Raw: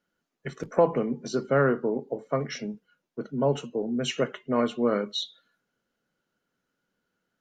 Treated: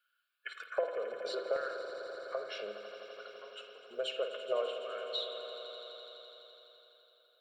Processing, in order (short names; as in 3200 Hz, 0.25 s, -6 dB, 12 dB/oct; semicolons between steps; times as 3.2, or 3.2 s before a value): HPF 150 Hz; high shelf 4500 Hz +5.5 dB; fixed phaser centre 1300 Hz, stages 8; compressor 10:1, threshold -36 dBFS, peak gain reduction 19 dB; LFO high-pass square 0.64 Hz 580–1700 Hz; swelling echo 84 ms, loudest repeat 5, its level -14.5 dB; reverb RT60 1.0 s, pre-delay 48 ms, DRR 7 dB